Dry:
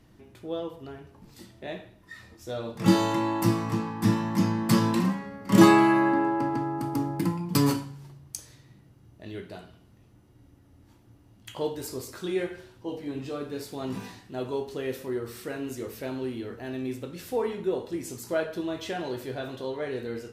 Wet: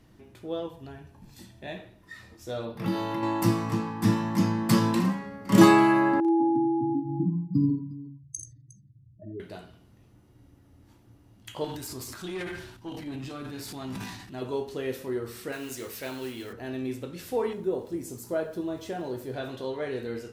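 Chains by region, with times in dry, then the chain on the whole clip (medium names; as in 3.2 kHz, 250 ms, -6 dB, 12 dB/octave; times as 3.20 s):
0.66–1.77 s: peaking EQ 880 Hz -3 dB 1.9 oct + band-stop 5 kHz, Q 26 + comb 1.2 ms, depth 38%
2.65–3.23 s: compression 2:1, threshold -30 dBFS + peaking EQ 7.3 kHz -14.5 dB 0.66 oct
6.20–9.40 s: spectral contrast enhancement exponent 3.4 + multi-tap echo 48/61/84/359 ms -7.5/-18/-9/-18.5 dB
11.64–14.42 s: peaking EQ 480 Hz -13.5 dB 0.57 oct + transient shaper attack +2 dB, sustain +10 dB + valve stage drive 29 dB, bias 0.25
15.52–16.53 s: tilt shelf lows -5.5 dB, about 850 Hz + modulation noise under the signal 18 dB
17.53–19.34 s: peaking EQ 2.7 kHz -9.5 dB 2.2 oct + small samples zeroed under -55.5 dBFS
whole clip: none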